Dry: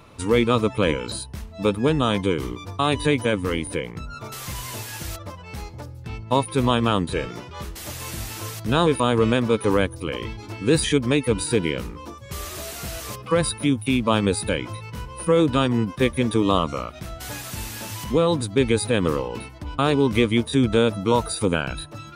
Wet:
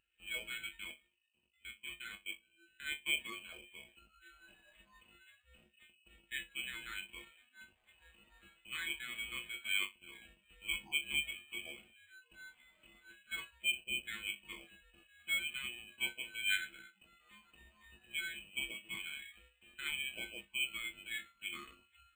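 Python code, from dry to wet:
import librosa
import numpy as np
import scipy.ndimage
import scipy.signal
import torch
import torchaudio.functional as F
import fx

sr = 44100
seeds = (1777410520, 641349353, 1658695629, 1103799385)

y = fx.rattle_buzz(x, sr, strikes_db=-31.0, level_db=-22.0)
y = fx.highpass(y, sr, hz=110.0, slope=6)
y = fx.level_steps(y, sr, step_db=22, at=(0.76, 3.07))
y = fx.add_hum(y, sr, base_hz=50, snr_db=26)
y = fx.resonator_bank(y, sr, root=43, chord='sus4', decay_s=0.26)
y = fx.vibrato(y, sr, rate_hz=0.49, depth_cents=7.2)
y = fx.freq_invert(y, sr, carrier_hz=2700)
y = np.repeat(y[::8], 8)[:len(y)]
y = fx.spectral_expand(y, sr, expansion=1.5)
y = F.gain(torch.from_numpy(y), -6.5).numpy()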